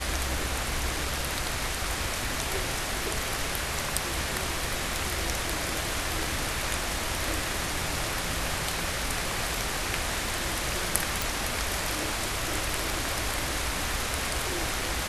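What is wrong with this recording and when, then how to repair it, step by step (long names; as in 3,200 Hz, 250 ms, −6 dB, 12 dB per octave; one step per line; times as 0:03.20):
0:11.22: click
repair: click removal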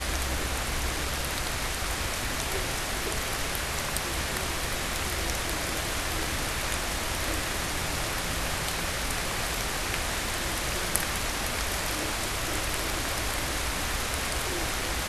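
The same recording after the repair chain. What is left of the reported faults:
none of them is left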